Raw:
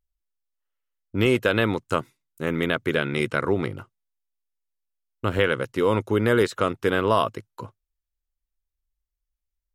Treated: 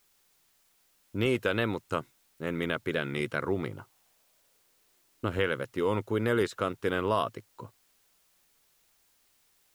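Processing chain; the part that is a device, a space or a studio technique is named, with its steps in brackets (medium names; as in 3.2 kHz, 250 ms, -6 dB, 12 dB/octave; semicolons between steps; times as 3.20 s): plain cassette with noise reduction switched in (tape noise reduction on one side only decoder only; wow and flutter; white noise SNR 35 dB); 3.70–5.26 s: peaking EQ 1 kHz -> 290 Hz +7.5 dB 0.68 oct; trim -7 dB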